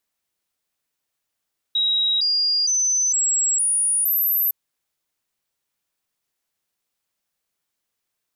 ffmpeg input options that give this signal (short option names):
-f lavfi -i "aevalsrc='0.141*clip(min(mod(t,0.46),0.46-mod(t,0.46))/0.005,0,1)*sin(2*PI*3830*pow(2,floor(t/0.46)/3)*mod(t,0.46))':d=2.76:s=44100"